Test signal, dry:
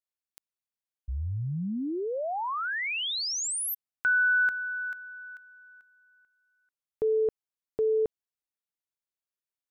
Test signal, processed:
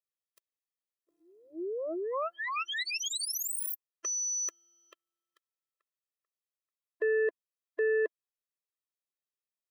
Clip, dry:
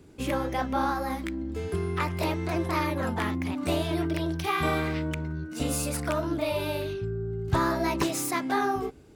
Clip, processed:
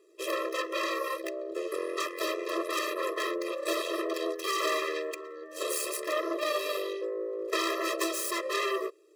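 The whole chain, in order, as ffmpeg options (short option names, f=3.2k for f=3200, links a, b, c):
-af "aeval=exprs='0.224*(cos(1*acos(clip(val(0)/0.224,-1,1)))-cos(1*PI/2))+0.0282*(cos(3*acos(clip(val(0)/0.224,-1,1)))-cos(3*PI/2))+0.00355*(cos(5*acos(clip(val(0)/0.224,-1,1)))-cos(5*PI/2))+0.0631*(cos(6*acos(clip(val(0)/0.224,-1,1)))-cos(6*PI/2))+0.1*(cos(8*acos(clip(val(0)/0.224,-1,1)))-cos(8*PI/2))':c=same,afftfilt=real='re*eq(mod(floor(b*sr/1024/340),2),1)':imag='im*eq(mod(floor(b*sr/1024/340),2),1)':win_size=1024:overlap=0.75"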